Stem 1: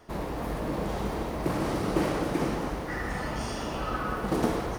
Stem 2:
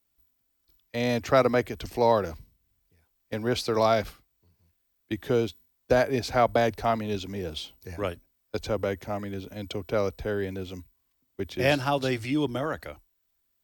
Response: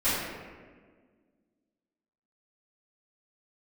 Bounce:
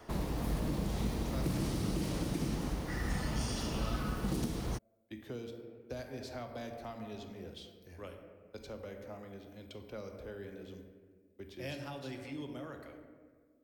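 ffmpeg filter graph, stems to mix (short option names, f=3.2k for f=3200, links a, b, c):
-filter_complex "[0:a]volume=1dB[a];[1:a]volume=-16dB,asplit=2[b][c];[c]volume=-17dB[d];[2:a]atrim=start_sample=2205[e];[d][e]afir=irnorm=-1:irlink=0[f];[a][b][f]amix=inputs=3:normalize=0,acrossover=split=260|3000[g][h][i];[h]acompressor=threshold=-43dB:ratio=5[j];[g][j][i]amix=inputs=3:normalize=0,alimiter=limit=-24dB:level=0:latency=1:release=326"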